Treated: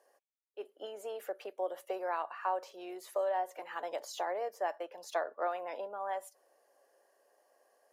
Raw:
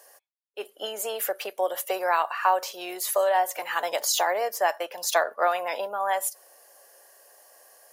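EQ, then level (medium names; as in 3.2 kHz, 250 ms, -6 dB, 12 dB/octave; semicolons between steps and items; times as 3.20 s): band-pass filter 250 Hz, Q 1.3; tilt EQ +3 dB/octave; peaking EQ 220 Hz -6.5 dB 0.23 oct; +1.5 dB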